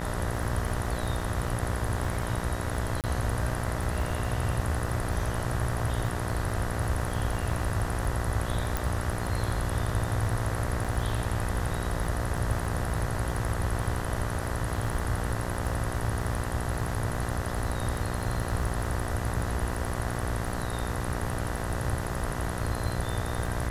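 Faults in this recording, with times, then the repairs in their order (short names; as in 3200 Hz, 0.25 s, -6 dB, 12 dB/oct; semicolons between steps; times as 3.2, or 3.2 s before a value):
buzz 60 Hz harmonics 33 -34 dBFS
crackle 29/s -34 dBFS
3.01–3.04 gap 28 ms
8.77 pop
10.84–10.85 gap 6.1 ms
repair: de-click; de-hum 60 Hz, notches 33; interpolate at 3.01, 28 ms; interpolate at 10.84, 6.1 ms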